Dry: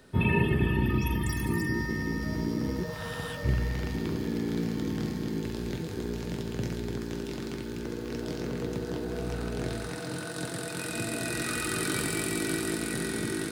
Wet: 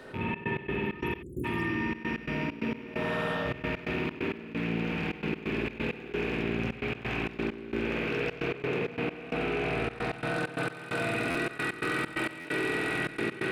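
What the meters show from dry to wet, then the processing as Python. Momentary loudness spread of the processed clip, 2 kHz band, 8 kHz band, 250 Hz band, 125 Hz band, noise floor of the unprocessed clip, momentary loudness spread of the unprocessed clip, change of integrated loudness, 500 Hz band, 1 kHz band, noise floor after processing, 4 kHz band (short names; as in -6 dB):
4 LU, +3.5 dB, under -15 dB, -2.0 dB, -6.0 dB, -37 dBFS, 9 LU, -0.5 dB, +1.5 dB, +3.5 dB, -44 dBFS, -1.5 dB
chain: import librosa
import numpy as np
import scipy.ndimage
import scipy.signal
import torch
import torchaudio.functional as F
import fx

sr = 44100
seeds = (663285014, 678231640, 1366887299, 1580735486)

y = fx.rattle_buzz(x, sr, strikes_db=-35.0, level_db=-26.0)
y = fx.rev_spring(y, sr, rt60_s=1.6, pass_ms=(53,), chirp_ms=50, drr_db=-7.0)
y = fx.spec_erase(y, sr, start_s=1.22, length_s=0.23, low_hz=560.0, high_hz=6500.0)
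y = fx.rider(y, sr, range_db=10, speed_s=0.5)
y = fx.bass_treble(y, sr, bass_db=-9, treble_db=-12)
y = fx.step_gate(y, sr, bpm=132, pattern='xxx.x.xx.x..xx', floor_db=-24.0, edge_ms=4.5)
y = fx.low_shelf(y, sr, hz=67.0, db=-8.0)
y = fx.buffer_glitch(y, sr, at_s=(11.3, 12.4), block=512, repeats=3)
y = fx.env_flatten(y, sr, amount_pct=50)
y = F.gain(torch.from_numpy(y), -4.5).numpy()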